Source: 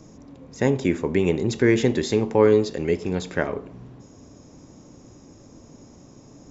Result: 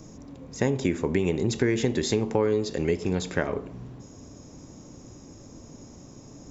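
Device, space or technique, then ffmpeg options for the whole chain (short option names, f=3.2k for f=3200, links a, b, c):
ASMR close-microphone chain: -af "lowshelf=f=120:g=4,acompressor=threshold=-20dB:ratio=5,highshelf=f=6.6k:g=7"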